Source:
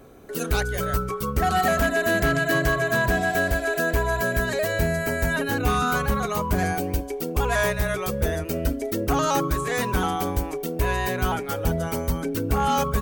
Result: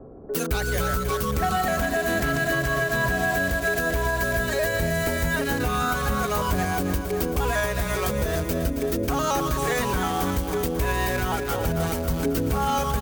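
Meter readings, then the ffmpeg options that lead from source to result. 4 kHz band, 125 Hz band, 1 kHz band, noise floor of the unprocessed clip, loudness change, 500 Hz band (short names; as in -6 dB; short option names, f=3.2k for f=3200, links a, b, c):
+0.5 dB, -0.5 dB, -1.0 dB, -32 dBFS, -0.5 dB, -0.5 dB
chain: -filter_complex "[0:a]acrossover=split=180|1000[a][b][c];[c]acrusher=bits=5:mix=0:aa=0.000001[d];[a][b][d]amix=inputs=3:normalize=0,aecho=1:1:271|542|813|1084|1355|1626|1897:0.316|0.183|0.106|0.0617|0.0358|0.0208|0.012,alimiter=limit=-20dB:level=0:latency=1:release=277,volume=5.5dB"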